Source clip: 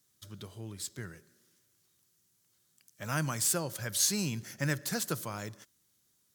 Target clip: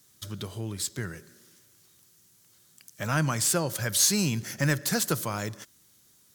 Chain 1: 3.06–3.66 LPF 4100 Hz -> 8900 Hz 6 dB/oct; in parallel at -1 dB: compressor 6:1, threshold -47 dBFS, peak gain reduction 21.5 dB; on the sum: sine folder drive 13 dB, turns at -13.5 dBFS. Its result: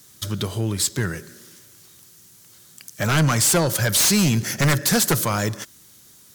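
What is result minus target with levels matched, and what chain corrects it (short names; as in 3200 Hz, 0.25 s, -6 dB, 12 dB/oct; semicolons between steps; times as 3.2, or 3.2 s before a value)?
sine folder: distortion +19 dB
3.06–3.66 LPF 4100 Hz -> 8900 Hz 6 dB/oct; in parallel at -1 dB: compressor 6:1, threshold -47 dBFS, peak gain reduction 21.5 dB; on the sum: sine folder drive 2 dB, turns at -13.5 dBFS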